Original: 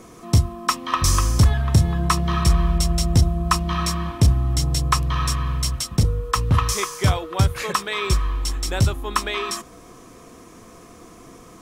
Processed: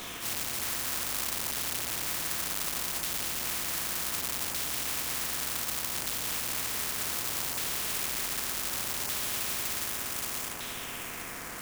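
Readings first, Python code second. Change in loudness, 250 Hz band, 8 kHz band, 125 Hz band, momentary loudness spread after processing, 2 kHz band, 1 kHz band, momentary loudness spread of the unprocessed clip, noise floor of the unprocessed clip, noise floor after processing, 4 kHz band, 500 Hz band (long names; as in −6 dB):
−9.0 dB, −18.5 dB, −2.5 dB, −29.5 dB, 3 LU, −5.5 dB, −14.5 dB, 6 LU, −45 dBFS, −40 dBFS, −5.5 dB, −14.0 dB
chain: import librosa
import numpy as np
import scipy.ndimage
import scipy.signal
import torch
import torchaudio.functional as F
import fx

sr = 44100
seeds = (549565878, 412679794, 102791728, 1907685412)

y = fx.phase_scramble(x, sr, seeds[0], window_ms=200)
y = fx.high_shelf(y, sr, hz=5400.0, db=11.5)
y = fx.echo_multitap(y, sr, ms=(176, 249), db=(-12.5, -5.5))
y = fx.rev_spring(y, sr, rt60_s=4.0, pass_ms=(56,), chirp_ms=30, drr_db=7.0)
y = np.clip(y, -10.0 ** (-18.5 / 20.0), 10.0 ** (-18.5 / 20.0))
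y = fx.filter_lfo_lowpass(y, sr, shape='saw_down', hz=0.66, low_hz=890.0, high_hz=3700.0, q=7.7)
y = fx.quant_companded(y, sr, bits=4)
y = fx.graphic_eq_10(y, sr, hz=(250, 500, 4000), db=(11, -11, -7))
y = fx.spectral_comp(y, sr, ratio=10.0)
y = y * librosa.db_to_amplitude(-7.0)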